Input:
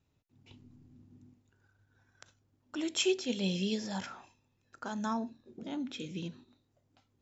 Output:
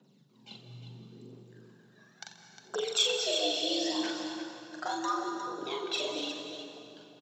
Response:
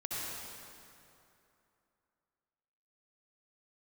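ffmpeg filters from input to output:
-filter_complex "[0:a]highshelf=frequency=4000:gain=-6.5,aphaser=in_gain=1:out_gain=1:delay=2:decay=0.72:speed=0.74:type=triangular,acompressor=threshold=-38dB:ratio=3,equalizer=frequency=125:width_type=o:width=1:gain=-9,equalizer=frequency=250:width_type=o:width=1:gain=-3,equalizer=frequency=2000:width_type=o:width=1:gain=-4,equalizer=frequency=4000:width_type=o:width=1:gain=8,afreqshift=120,aecho=1:1:42|357:0.668|0.355,asplit=2[link_01][link_02];[1:a]atrim=start_sample=2205,adelay=89[link_03];[link_02][link_03]afir=irnorm=-1:irlink=0,volume=-8.5dB[link_04];[link_01][link_04]amix=inputs=2:normalize=0,volume=6.5dB"

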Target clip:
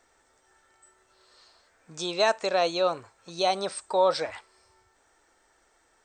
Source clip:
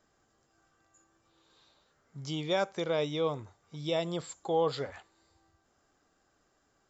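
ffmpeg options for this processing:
ffmpeg -i in.wav -af "equalizer=frequency=130:width_type=o:width=1.6:gain=-15,asetrate=50274,aresample=44100,volume=8dB" out.wav

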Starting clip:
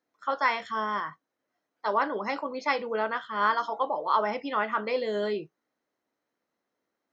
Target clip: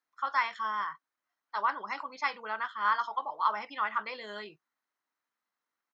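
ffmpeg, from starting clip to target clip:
ffmpeg -i in.wav -af "atempo=1.2,lowshelf=frequency=740:width_type=q:width=1.5:gain=-10.5,volume=-4dB" out.wav

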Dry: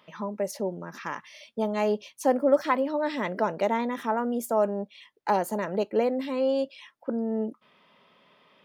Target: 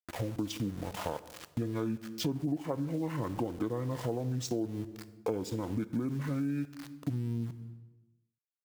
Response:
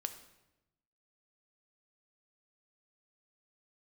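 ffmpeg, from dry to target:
-filter_complex "[0:a]asetrate=23361,aresample=44100,atempo=1.88775,aeval=exprs='val(0)*gte(abs(val(0)),0.00794)':channel_layout=same,asplit=2[link_01][link_02];[1:a]atrim=start_sample=2205,highshelf=frequency=4900:gain=8[link_03];[link_02][link_03]afir=irnorm=-1:irlink=0,volume=-0.5dB[link_04];[link_01][link_04]amix=inputs=2:normalize=0,acompressor=threshold=-31dB:ratio=6"

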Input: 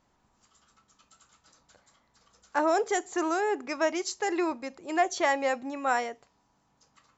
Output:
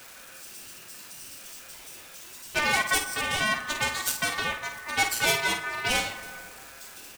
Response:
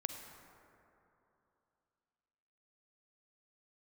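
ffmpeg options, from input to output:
-filter_complex "[0:a]aeval=exprs='val(0)+0.5*0.00944*sgn(val(0))':channel_layout=same,aecho=1:1:7.2:0.41,aeval=exprs='0.266*(cos(1*acos(clip(val(0)/0.266,-1,1)))-cos(1*PI/2))+0.0596*(cos(8*acos(clip(val(0)/0.266,-1,1)))-cos(8*PI/2))':channel_layout=same,aeval=exprs='val(0)*sin(2*PI*1500*n/s)':channel_layout=same,crystalizer=i=2:c=0,asplit=2[link_01][link_02];[1:a]atrim=start_sample=2205,adelay=51[link_03];[link_02][link_03]afir=irnorm=-1:irlink=0,volume=-5.5dB[link_04];[link_01][link_04]amix=inputs=2:normalize=0,aeval=exprs='0.473*(cos(1*acos(clip(val(0)/0.473,-1,1)))-cos(1*PI/2))+0.0531*(cos(3*acos(clip(val(0)/0.473,-1,1)))-cos(3*PI/2))':channel_layout=same"

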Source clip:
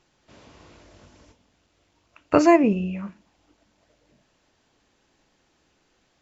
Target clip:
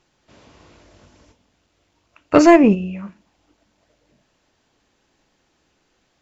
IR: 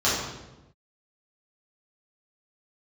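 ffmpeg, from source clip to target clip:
-filter_complex "[0:a]asplit=3[link_01][link_02][link_03];[link_01]afade=type=out:start_time=2.34:duration=0.02[link_04];[link_02]acontrast=68,afade=type=in:start_time=2.34:duration=0.02,afade=type=out:start_time=2.74:duration=0.02[link_05];[link_03]afade=type=in:start_time=2.74:duration=0.02[link_06];[link_04][link_05][link_06]amix=inputs=3:normalize=0,volume=1dB"

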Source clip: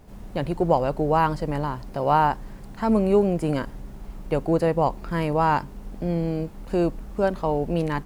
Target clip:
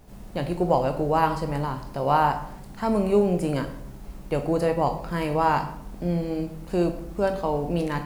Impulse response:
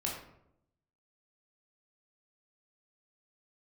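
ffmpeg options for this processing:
-filter_complex "[0:a]asplit=2[link_01][link_02];[1:a]atrim=start_sample=2205,highshelf=frequency=2900:gain=11.5[link_03];[link_02][link_03]afir=irnorm=-1:irlink=0,volume=-6.5dB[link_04];[link_01][link_04]amix=inputs=2:normalize=0,volume=-5dB"

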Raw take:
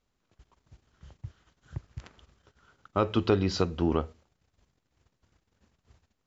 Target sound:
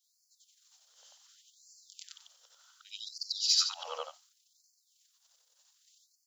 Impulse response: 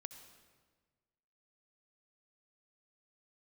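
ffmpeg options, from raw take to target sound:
-af "afftfilt=real='re':imag='-im':win_size=8192:overlap=0.75,aexciter=amount=4:drive=9:freq=3300,afftfilt=real='re*gte(b*sr/1024,440*pow(4300/440,0.5+0.5*sin(2*PI*0.67*pts/sr)))':imag='im*gte(b*sr/1024,440*pow(4300/440,0.5+0.5*sin(2*PI*0.67*pts/sr)))':win_size=1024:overlap=0.75"

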